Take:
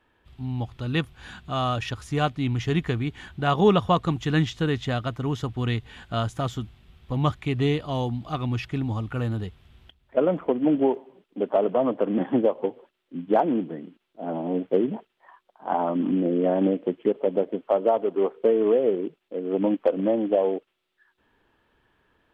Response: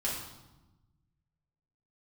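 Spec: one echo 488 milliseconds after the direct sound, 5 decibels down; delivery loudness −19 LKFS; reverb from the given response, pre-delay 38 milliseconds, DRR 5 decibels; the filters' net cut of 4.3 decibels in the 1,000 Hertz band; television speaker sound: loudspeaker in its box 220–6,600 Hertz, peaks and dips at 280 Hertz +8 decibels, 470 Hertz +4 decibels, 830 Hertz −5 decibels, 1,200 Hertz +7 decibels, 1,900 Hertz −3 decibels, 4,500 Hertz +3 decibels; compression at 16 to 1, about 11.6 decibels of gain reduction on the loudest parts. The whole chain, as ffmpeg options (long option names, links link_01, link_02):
-filter_complex "[0:a]equalizer=frequency=1000:width_type=o:gain=-7.5,acompressor=threshold=-28dB:ratio=16,aecho=1:1:488:0.562,asplit=2[link_01][link_02];[1:a]atrim=start_sample=2205,adelay=38[link_03];[link_02][link_03]afir=irnorm=-1:irlink=0,volume=-10dB[link_04];[link_01][link_04]amix=inputs=2:normalize=0,highpass=frequency=220:width=0.5412,highpass=frequency=220:width=1.3066,equalizer=frequency=280:width_type=q:width=4:gain=8,equalizer=frequency=470:width_type=q:width=4:gain=4,equalizer=frequency=830:width_type=q:width=4:gain=-5,equalizer=frequency=1200:width_type=q:width=4:gain=7,equalizer=frequency=1900:width_type=q:width=4:gain=-3,equalizer=frequency=4500:width_type=q:width=4:gain=3,lowpass=frequency=6600:width=0.5412,lowpass=frequency=6600:width=1.3066,volume=10.5dB"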